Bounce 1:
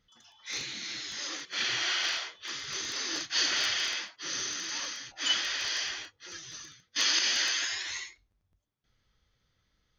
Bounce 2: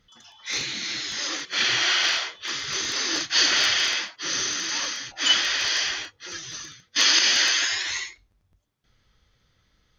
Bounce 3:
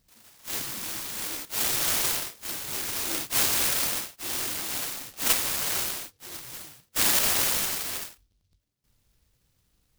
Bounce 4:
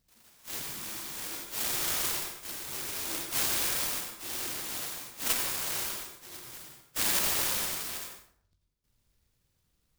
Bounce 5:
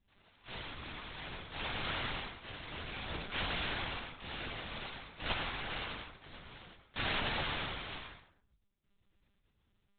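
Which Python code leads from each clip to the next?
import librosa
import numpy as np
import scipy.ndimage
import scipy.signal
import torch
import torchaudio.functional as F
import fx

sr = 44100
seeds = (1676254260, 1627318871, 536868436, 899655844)

y1 = fx.high_shelf(x, sr, hz=10000.0, db=-4.5)
y1 = F.gain(torch.from_numpy(y1), 8.5).numpy()
y2 = fx.noise_mod_delay(y1, sr, seeds[0], noise_hz=4300.0, depth_ms=0.32)
y2 = F.gain(torch.from_numpy(y2), -3.5).numpy()
y3 = fx.rev_plate(y2, sr, seeds[1], rt60_s=0.58, hf_ratio=0.65, predelay_ms=75, drr_db=4.0)
y3 = F.gain(torch.from_numpy(y3), -6.0).numpy()
y4 = fx.lpc_monotone(y3, sr, seeds[2], pitch_hz=200.0, order=10)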